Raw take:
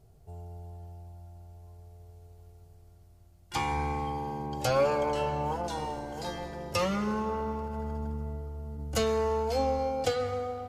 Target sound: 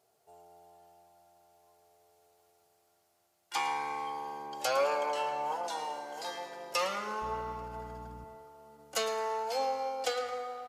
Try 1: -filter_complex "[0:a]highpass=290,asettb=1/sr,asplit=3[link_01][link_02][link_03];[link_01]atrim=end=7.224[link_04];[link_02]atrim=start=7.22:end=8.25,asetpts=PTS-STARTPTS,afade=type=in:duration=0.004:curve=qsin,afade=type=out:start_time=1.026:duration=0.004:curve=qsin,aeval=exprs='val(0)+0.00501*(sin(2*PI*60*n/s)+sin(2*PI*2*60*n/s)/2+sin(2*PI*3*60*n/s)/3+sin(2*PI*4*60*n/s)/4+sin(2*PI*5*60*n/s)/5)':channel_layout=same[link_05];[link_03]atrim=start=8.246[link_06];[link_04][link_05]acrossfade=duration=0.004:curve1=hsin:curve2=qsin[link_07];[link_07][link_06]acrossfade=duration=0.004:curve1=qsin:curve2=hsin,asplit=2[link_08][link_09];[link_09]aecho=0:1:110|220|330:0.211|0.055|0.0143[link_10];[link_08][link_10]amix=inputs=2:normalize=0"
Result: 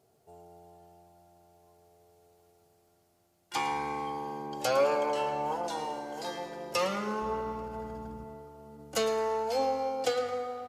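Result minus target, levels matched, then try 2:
250 Hz band +8.5 dB
-filter_complex "[0:a]highpass=630,asettb=1/sr,asplit=3[link_01][link_02][link_03];[link_01]atrim=end=7.224[link_04];[link_02]atrim=start=7.22:end=8.25,asetpts=PTS-STARTPTS,afade=type=in:duration=0.004:curve=qsin,afade=type=out:start_time=1.026:duration=0.004:curve=qsin,aeval=exprs='val(0)+0.00501*(sin(2*PI*60*n/s)+sin(2*PI*2*60*n/s)/2+sin(2*PI*3*60*n/s)/3+sin(2*PI*4*60*n/s)/4+sin(2*PI*5*60*n/s)/5)':channel_layout=same[link_05];[link_03]atrim=start=8.246[link_06];[link_04][link_05]acrossfade=duration=0.004:curve1=hsin:curve2=qsin[link_07];[link_07][link_06]acrossfade=duration=0.004:curve1=qsin:curve2=hsin,asplit=2[link_08][link_09];[link_09]aecho=0:1:110|220|330:0.211|0.055|0.0143[link_10];[link_08][link_10]amix=inputs=2:normalize=0"

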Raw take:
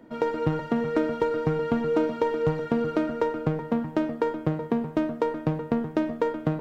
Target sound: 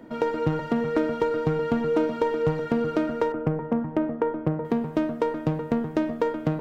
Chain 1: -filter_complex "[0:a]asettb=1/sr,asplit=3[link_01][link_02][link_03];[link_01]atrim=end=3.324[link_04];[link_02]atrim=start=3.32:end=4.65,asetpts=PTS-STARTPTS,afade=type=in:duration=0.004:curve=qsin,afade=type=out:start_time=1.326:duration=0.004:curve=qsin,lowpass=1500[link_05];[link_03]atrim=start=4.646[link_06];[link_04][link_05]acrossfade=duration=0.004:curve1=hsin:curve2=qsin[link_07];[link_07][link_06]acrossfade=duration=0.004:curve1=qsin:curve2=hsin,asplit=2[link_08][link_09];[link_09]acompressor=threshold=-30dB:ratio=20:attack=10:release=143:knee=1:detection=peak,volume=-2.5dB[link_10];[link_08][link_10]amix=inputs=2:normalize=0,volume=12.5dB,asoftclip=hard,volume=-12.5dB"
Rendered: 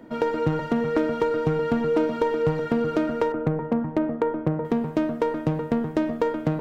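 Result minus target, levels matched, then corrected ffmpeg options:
downward compressor: peak gain reduction −8.5 dB
-filter_complex "[0:a]asettb=1/sr,asplit=3[link_01][link_02][link_03];[link_01]atrim=end=3.324[link_04];[link_02]atrim=start=3.32:end=4.65,asetpts=PTS-STARTPTS,afade=type=in:duration=0.004:curve=qsin,afade=type=out:start_time=1.326:duration=0.004:curve=qsin,lowpass=1500[link_05];[link_03]atrim=start=4.646[link_06];[link_04][link_05]acrossfade=duration=0.004:curve1=hsin:curve2=qsin[link_07];[link_07][link_06]acrossfade=duration=0.004:curve1=qsin:curve2=hsin,asplit=2[link_08][link_09];[link_09]acompressor=threshold=-39dB:ratio=20:attack=10:release=143:knee=1:detection=peak,volume=-2.5dB[link_10];[link_08][link_10]amix=inputs=2:normalize=0,volume=12.5dB,asoftclip=hard,volume=-12.5dB"

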